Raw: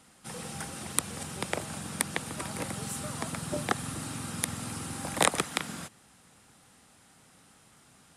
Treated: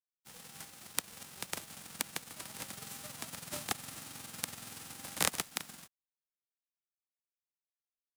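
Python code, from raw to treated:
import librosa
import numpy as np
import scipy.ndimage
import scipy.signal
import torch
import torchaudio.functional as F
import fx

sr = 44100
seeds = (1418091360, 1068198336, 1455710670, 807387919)

y = fx.envelope_flatten(x, sr, power=0.3)
y = np.sign(y) * np.maximum(np.abs(y) - 10.0 ** (-42.0 / 20.0), 0.0)
y = y * librosa.db_to_amplitude(-6.0)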